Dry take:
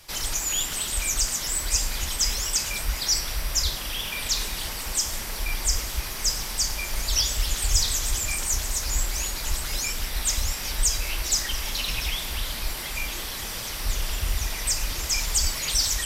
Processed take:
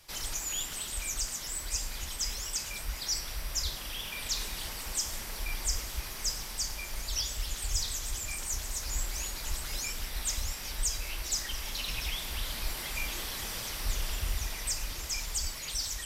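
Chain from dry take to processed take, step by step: gain riding 2 s; trim -8.5 dB

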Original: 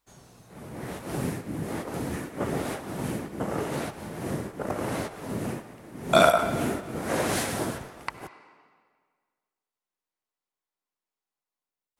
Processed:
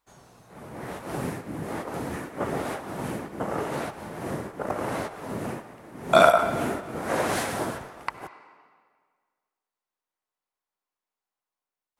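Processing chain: peaking EQ 990 Hz +6.5 dB 2.4 oct; trim -3 dB

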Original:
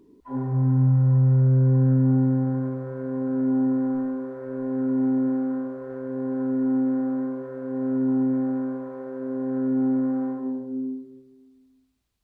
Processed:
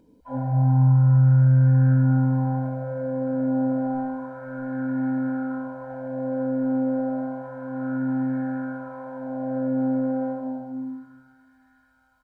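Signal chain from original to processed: comb 1.3 ms, depth 97%; feedback echo behind a high-pass 727 ms, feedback 60%, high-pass 1.5 kHz, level -12.5 dB; sweeping bell 0.3 Hz 480–1700 Hz +10 dB; trim -2.5 dB

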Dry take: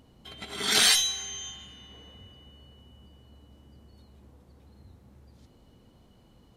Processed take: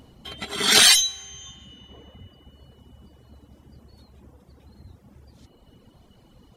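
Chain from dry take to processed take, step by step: reverb removal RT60 1.6 s; trim +8 dB

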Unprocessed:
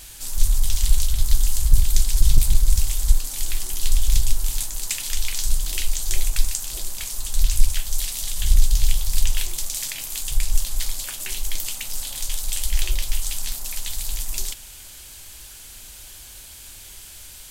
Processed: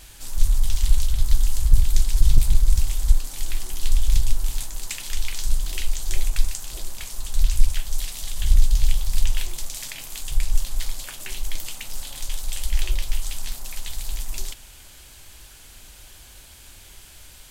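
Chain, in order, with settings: treble shelf 3.7 kHz -8 dB

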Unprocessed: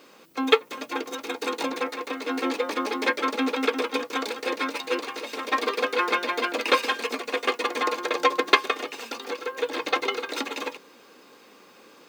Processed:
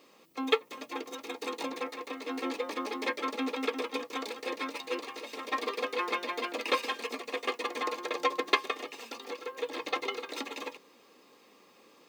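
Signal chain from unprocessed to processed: Butterworth band-stop 1.5 kHz, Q 6.5; trim -7.5 dB

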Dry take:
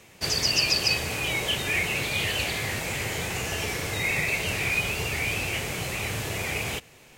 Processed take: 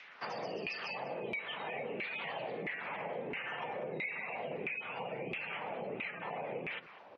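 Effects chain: frequency shift +60 Hz; word length cut 8-bit, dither triangular; distance through air 160 m; spectral gate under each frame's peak -20 dB strong; LFO band-pass saw down 1.5 Hz 350–2200 Hz; compression, threshold -43 dBFS, peak gain reduction 13.5 dB; delay 199 ms -17.5 dB; trim +6 dB

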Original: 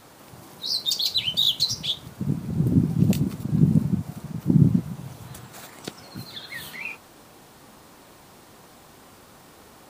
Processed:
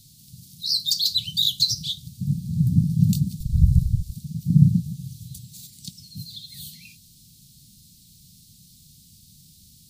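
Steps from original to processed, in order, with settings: 3.39–4.15 s: frequency shift -84 Hz; elliptic band-stop 170–4100 Hz, stop band 60 dB; trim +3.5 dB

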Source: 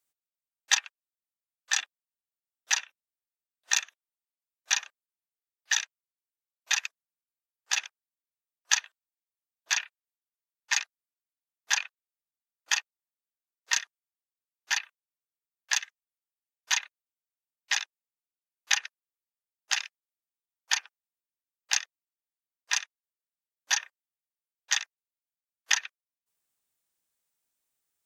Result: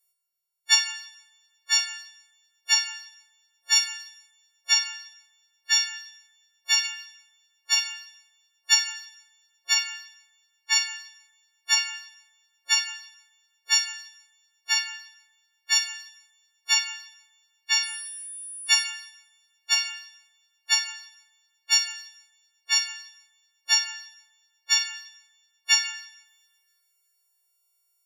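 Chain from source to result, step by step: partials quantised in pitch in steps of 4 st; 17.82–18.83 s: whistle 9.8 kHz -31 dBFS; two-slope reverb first 0.87 s, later 2.5 s, from -27 dB, DRR 7 dB; trim -4.5 dB

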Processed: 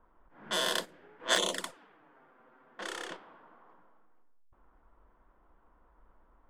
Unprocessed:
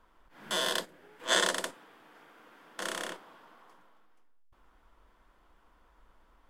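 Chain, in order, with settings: level-controlled noise filter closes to 1.2 kHz, open at -30 dBFS; 1.35–3.11 s: touch-sensitive flanger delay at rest 8.6 ms, full sweep at -24.5 dBFS

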